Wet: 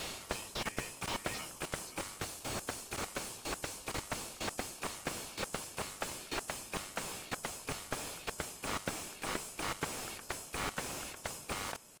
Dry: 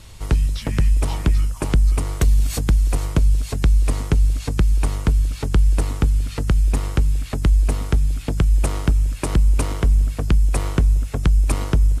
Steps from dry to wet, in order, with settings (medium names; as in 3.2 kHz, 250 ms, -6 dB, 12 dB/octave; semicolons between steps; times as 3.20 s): fade out at the end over 0.89 s; high-pass 1.3 kHz 24 dB/octave; in parallel at -4.5 dB: sample-rate reducer 2 kHz, jitter 0%; on the sum: band-stop 2 kHz, Q 19; level held to a coarse grid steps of 19 dB; dynamic bell 8.7 kHz, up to +5 dB, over -55 dBFS, Q 0.89; reverse; compression 10:1, threshold -48 dBFS, peak gain reduction 16 dB; reverse; slew-rate limiter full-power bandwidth 6.5 Hz; trim +18 dB